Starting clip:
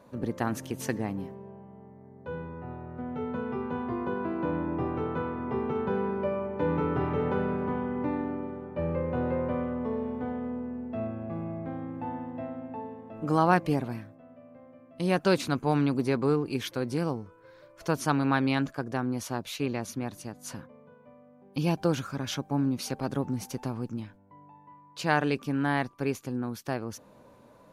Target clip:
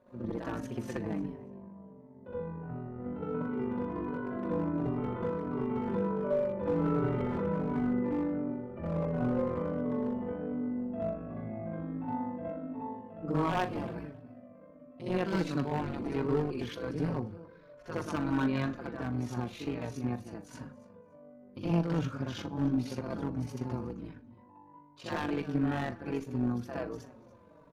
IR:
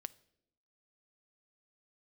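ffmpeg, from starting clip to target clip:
-filter_complex "[0:a]lowpass=frequency=1800:poles=1,bandreject=frequency=790:width=12,asplit=2[link_01][link_02];[link_02]alimiter=limit=-22dB:level=0:latency=1,volume=-2dB[link_03];[link_01][link_03]amix=inputs=2:normalize=0,tremolo=f=49:d=0.667,aeval=exprs='0.178*(abs(mod(val(0)/0.178+3,4)-2)-1)':channel_layout=same,asplit=2[link_04][link_05];[link_05]adelay=41,volume=-14dB[link_06];[link_04][link_06]amix=inputs=2:normalize=0,aecho=1:1:285|570:0.0944|0.0151,asplit=2[link_07][link_08];[1:a]atrim=start_sample=2205,asetrate=37926,aresample=44100,adelay=65[link_09];[link_08][link_09]afir=irnorm=-1:irlink=0,volume=9dB[link_10];[link_07][link_10]amix=inputs=2:normalize=0,aeval=exprs='clip(val(0),-1,0.178)':channel_layout=same,asplit=2[link_11][link_12];[link_12]adelay=5,afreqshift=-1.4[link_13];[link_11][link_13]amix=inputs=2:normalize=1,volume=-8dB"

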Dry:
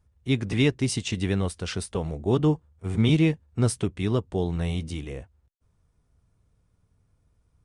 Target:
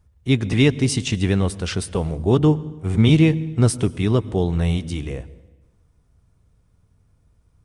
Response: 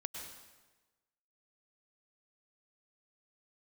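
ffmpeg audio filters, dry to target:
-filter_complex "[0:a]asplit=2[link_01][link_02];[1:a]atrim=start_sample=2205,lowshelf=frequency=290:gain=10.5[link_03];[link_02][link_03]afir=irnorm=-1:irlink=0,volume=-14dB[link_04];[link_01][link_04]amix=inputs=2:normalize=0,volume=4dB"

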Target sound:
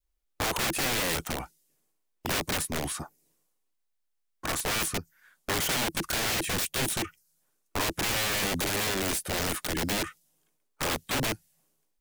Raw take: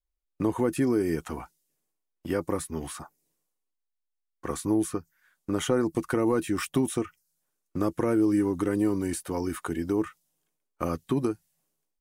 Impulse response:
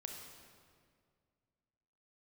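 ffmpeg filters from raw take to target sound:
-af "aeval=exprs='(mod(25.1*val(0)+1,2)-1)/25.1':channel_layout=same,adynamicequalizer=threshold=0.00251:dfrequency=1100:dqfactor=1.5:tfrequency=1100:tqfactor=1.5:attack=5:release=100:ratio=0.375:range=3.5:mode=cutabove:tftype=bell,volume=5.5dB"

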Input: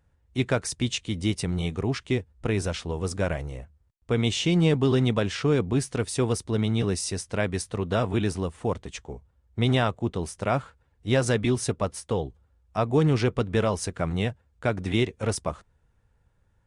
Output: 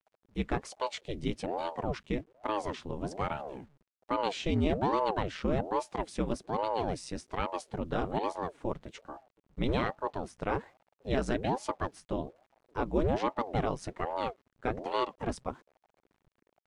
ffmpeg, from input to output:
ffmpeg -i in.wav -af "acrusher=bits=9:mix=0:aa=0.000001,aemphasis=mode=reproduction:type=50fm,aeval=exprs='val(0)*sin(2*PI*410*n/s+410*0.85/1.2*sin(2*PI*1.2*n/s))':channel_layout=same,volume=-4.5dB" out.wav

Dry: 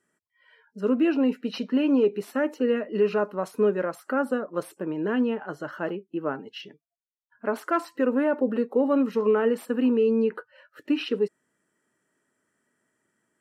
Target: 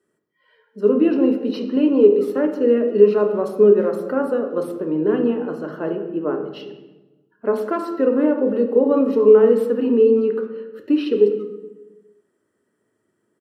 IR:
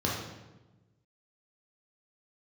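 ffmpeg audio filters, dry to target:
-filter_complex "[0:a]equalizer=frequency=400:width_type=o:width=0.67:gain=8,equalizer=frequency=1600:width_type=o:width=0.67:gain=-4,equalizer=frequency=6300:width_type=o:width=0.67:gain=-4,asplit=2[link_01][link_02];[link_02]adelay=180,highpass=300,lowpass=3400,asoftclip=type=hard:threshold=-15dB,volume=-21dB[link_03];[link_01][link_03]amix=inputs=2:normalize=0,asplit=2[link_04][link_05];[1:a]atrim=start_sample=2205[link_06];[link_05][link_06]afir=irnorm=-1:irlink=0,volume=-10dB[link_07];[link_04][link_07]amix=inputs=2:normalize=0,volume=-2.5dB"

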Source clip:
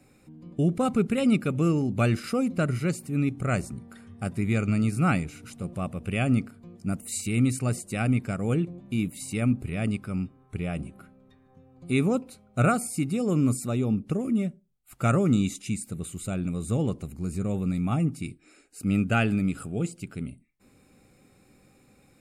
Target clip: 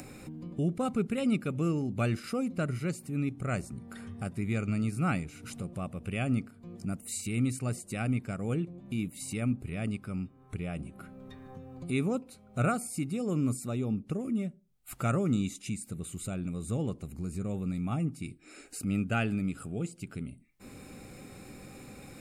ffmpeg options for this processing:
ffmpeg -i in.wav -af "acompressor=mode=upward:threshold=-26dB:ratio=2.5,volume=-6dB" out.wav

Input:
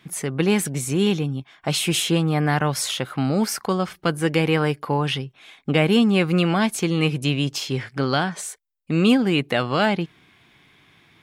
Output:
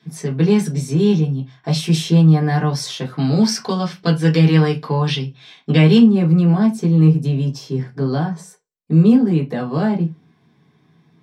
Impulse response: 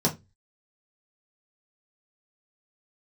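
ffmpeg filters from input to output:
-filter_complex "[0:a]asetnsamples=nb_out_samples=441:pad=0,asendcmd='3.19 equalizer g 14.5;5.98 equalizer g -3',equalizer=frequency=3500:width=0.54:gain=7[link_01];[1:a]atrim=start_sample=2205,afade=type=out:start_time=0.3:duration=0.01,atrim=end_sample=13671[link_02];[link_01][link_02]afir=irnorm=-1:irlink=0,volume=-16dB"

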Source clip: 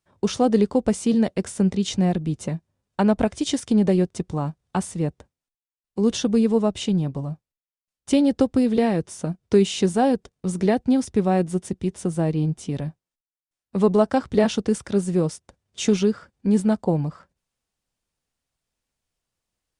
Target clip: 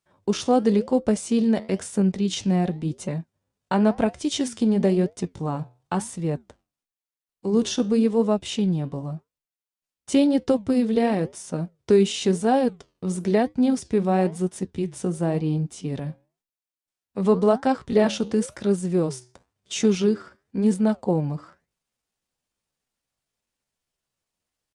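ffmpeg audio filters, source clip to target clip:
ffmpeg -i in.wav -af "flanger=delay=4.8:depth=7.3:regen=-77:speed=1.2:shape=sinusoidal,lowshelf=frequency=100:gain=-7.5,atempo=0.8,volume=4dB" out.wav

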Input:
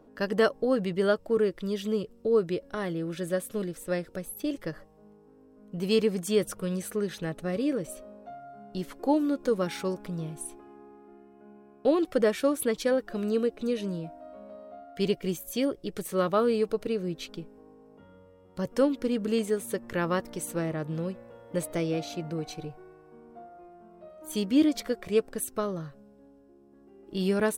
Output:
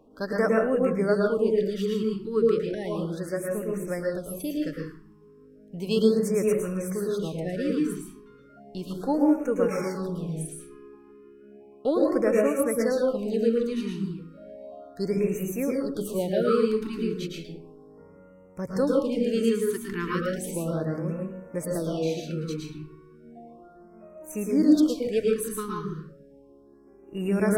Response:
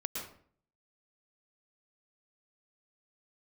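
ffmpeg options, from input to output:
-filter_complex "[1:a]atrim=start_sample=2205[link_01];[0:a][link_01]afir=irnorm=-1:irlink=0,afftfilt=real='re*(1-between(b*sr/1024,600*pow(4100/600,0.5+0.5*sin(2*PI*0.34*pts/sr))/1.41,600*pow(4100/600,0.5+0.5*sin(2*PI*0.34*pts/sr))*1.41))':imag='im*(1-between(b*sr/1024,600*pow(4100/600,0.5+0.5*sin(2*PI*0.34*pts/sr))/1.41,600*pow(4100/600,0.5+0.5*sin(2*PI*0.34*pts/sr))*1.41))':win_size=1024:overlap=0.75"

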